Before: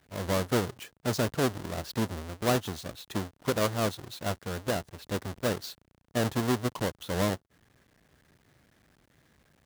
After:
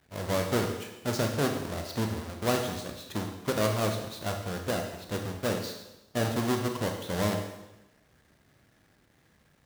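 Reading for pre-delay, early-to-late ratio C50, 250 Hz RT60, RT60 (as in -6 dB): 21 ms, 5.5 dB, 0.95 s, 1.0 s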